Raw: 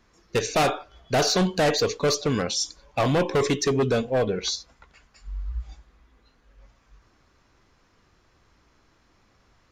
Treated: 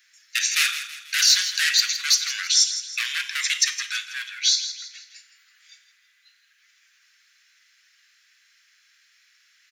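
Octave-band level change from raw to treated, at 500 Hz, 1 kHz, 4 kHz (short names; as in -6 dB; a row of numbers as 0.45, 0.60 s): under -40 dB, -13.5 dB, +9.0 dB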